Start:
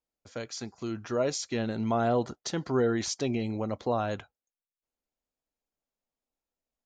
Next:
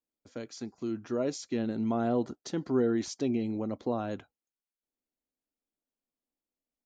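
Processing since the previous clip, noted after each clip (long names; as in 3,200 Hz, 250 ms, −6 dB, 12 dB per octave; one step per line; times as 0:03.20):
parametric band 280 Hz +10.5 dB 1.3 octaves
level −7.5 dB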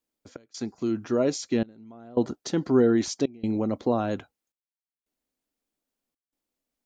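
gate pattern "xx.xxxxxx...xxxx" 83 BPM −24 dB
level +7 dB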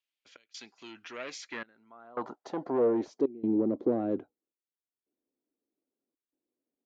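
soft clipping −21 dBFS, distortion −11 dB
band-pass filter sweep 2,800 Hz → 350 Hz, 0:01.09–0:03.39
level +6 dB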